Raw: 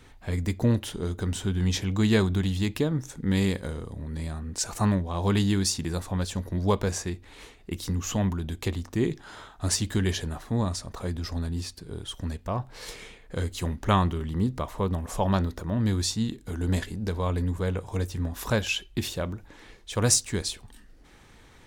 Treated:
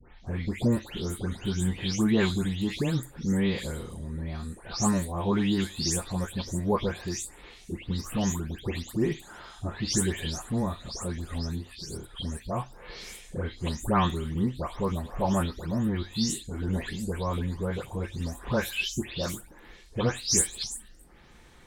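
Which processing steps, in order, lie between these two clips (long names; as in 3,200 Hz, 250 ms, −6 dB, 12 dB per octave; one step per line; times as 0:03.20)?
every frequency bin delayed by itself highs late, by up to 268 ms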